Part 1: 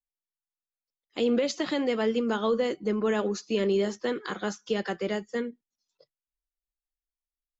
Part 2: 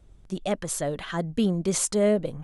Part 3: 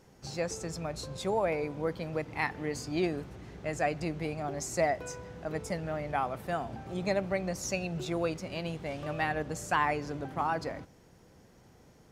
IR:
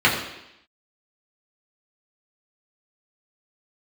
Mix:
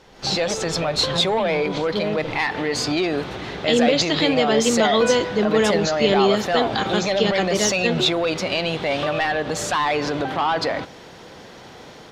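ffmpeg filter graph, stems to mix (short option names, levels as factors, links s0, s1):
-filter_complex "[0:a]adelay=2500,volume=0.75[s0];[1:a]lowpass=f=3800:w=0.5412,lowpass=f=3800:w=1.3066,volume=0.355[s1];[2:a]asplit=2[s2][s3];[s3]highpass=f=720:p=1,volume=7.94,asoftclip=type=tanh:threshold=0.188[s4];[s2][s4]amix=inputs=2:normalize=0,lowpass=f=2000:p=1,volume=0.501,volume=1.19[s5];[s1][s5]amix=inputs=2:normalize=0,alimiter=limit=0.0631:level=0:latency=1:release=95,volume=1[s6];[s0][s6]amix=inputs=2:normalize=0,equalizer=f=3700:t=o:w=0.8:g=10.5,dynaudnorm=f=130:g=3:m=2.99"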